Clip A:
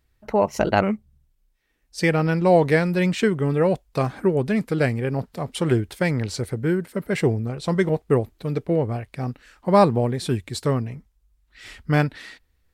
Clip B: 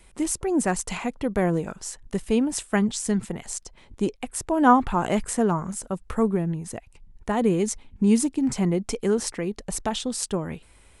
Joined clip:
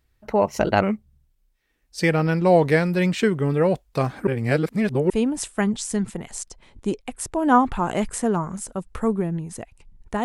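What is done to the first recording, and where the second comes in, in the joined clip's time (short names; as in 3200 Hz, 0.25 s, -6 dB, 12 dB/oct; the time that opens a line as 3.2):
clip A
4.27–5.1 reverse
5.1 switch to clip B from 2.25 s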